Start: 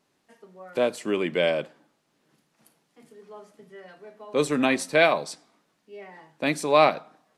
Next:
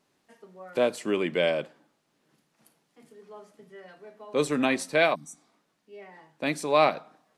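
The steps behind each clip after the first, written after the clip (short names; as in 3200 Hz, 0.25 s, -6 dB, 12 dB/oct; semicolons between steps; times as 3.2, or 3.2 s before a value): in parallel at 0 dB: vocal rider within 3 dB; on the sum: spectral repair 5.17–5.42, 320–5700 Hz after; gain -8 dB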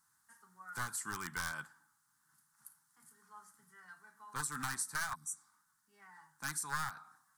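one-sided fold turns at -21 dBFS; EQ curve 120 Hz 0 dB, 590 Hz -28 dB, 850 Hz 0 dB, 1500 Hz +10 dB, 2500 Hz -13 dB, 8700 Hz +14 dB; compressor 6:1, threshold -28 dBFS, peak gain reduction 10.5 dB; gain -6.5 dB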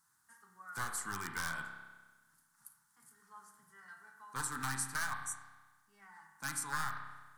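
spring tank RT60 1.3 s, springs 30 ms, chirp 25 ms, DRR 4 dB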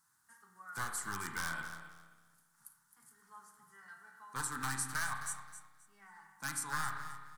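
feedback echo 0.264 s, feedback 23%, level -12 dB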